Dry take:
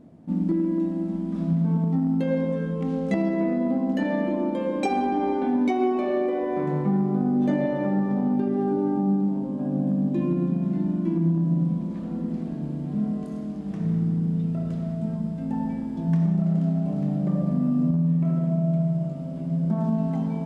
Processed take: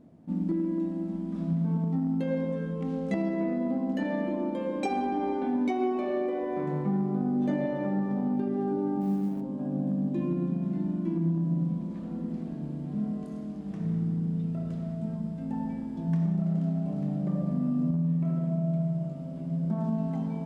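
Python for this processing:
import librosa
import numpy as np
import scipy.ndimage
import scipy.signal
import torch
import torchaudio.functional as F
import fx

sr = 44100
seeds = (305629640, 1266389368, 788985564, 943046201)

y = fx.law_mismatch(x, sr, coded='A', at=(9.0, 9.4), fade=0.02)
y = y * 10.0 ** (-5.0 / 20.0)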